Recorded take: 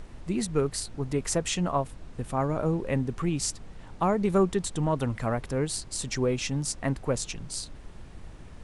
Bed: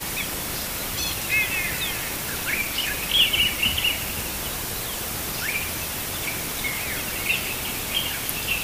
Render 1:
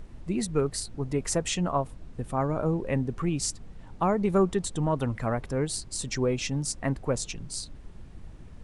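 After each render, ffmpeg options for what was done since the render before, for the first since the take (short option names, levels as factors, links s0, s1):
-af "afftdn=nr=6:nf=-46"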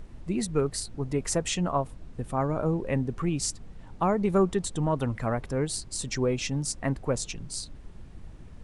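-af anull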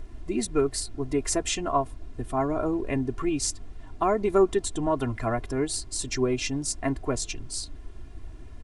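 -af "aecho=1:1:2.9:0.79"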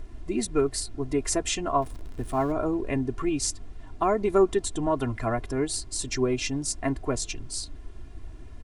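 -filter_complex "[0:a]asettb=1/sr,asplit=3[s0][s1][s2];[s0]atrim=end=1.824[s3];[s1]atrim=start=1.82:end=2.52,asetpts=PTS-STARTPTS,afade=t=in:d=0.004:c=qsin,afade=t=out:st=0.696:d=0.004:c=qsin,aeval=exprs='val(0)+0.5*0.0075*sgn(val(0))':c=same[s4];[s2]atrim=start=2.516[s5];[s3][s4]acrossfade=d=0.004:c1=hsin:c2=qsin[s6];[s6][s5]acrossfade=d=0.004:c1=qsin:c2=hsin"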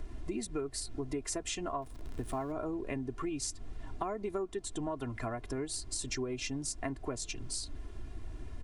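-filter_complex "[0:a]acrossover=split=110|1400[s0][s1][s2];[s0]alimiter=level_in=2.82:limit=0.0631:level=0:latency=1,volume=0.355[s3];[s3][s1][s2]amix=inputs=3:normalize=0,acompressor=threshold=0.02:ratio=6"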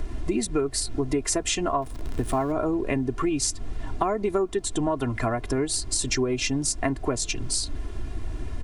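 -af "volume=3.76"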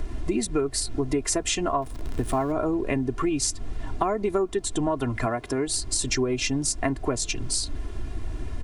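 -filter_complex "[0:a]asettb=1/sr,asplit=3[s0][s1][s2];[s0]atrim=end=5.264[s3];[s1]atrim=start=5.26:end=5.67,asetpts=PTS-STARTPTS,afade=t=in:d=0.004:c=qsin,afade=t=out:st=0.406:d=0.004:c=qsin,highpass=f=160:p=1[s4];[s2]atrim=start=5.666[s5];[s3][s4]acrossfade=d=0.004:c1=hsin:c2=qsin[s6];[s6][s5]acrossfade=d=0.004:c1=qsin:c2=hsin"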